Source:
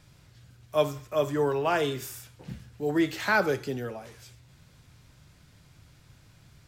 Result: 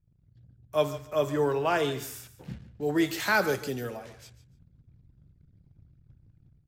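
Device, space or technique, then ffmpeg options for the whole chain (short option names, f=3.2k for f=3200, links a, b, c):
voice memo with heavy noise removal: -filter_complex "[0:a]asettb=1/sr,asplit=3[a][b][c];[a]atrim=end=2.984[d];[b]atrim=start=2.98:end=3.97,asetpts=PTS-STARTPTS,afade=t=in:d=0.004:c=qsin,afade=t=out:st=0.986:d=0.004:c=qsin,aemphasis=mode=production:type=cd[e];[c]atrim=start=3.966[f];[d][e]acrossfade=d=0.004:c1=hsin:c2=qsin[g];[g][f]acrossfade=d=0.004:c1=qsin:c2=hsin,anlmdn=0.00158,dynaudnorm=f=120:g=5:m=8.5dB,aecho=1:1:146|292:0.178|0.0356,volume=-8.5dB"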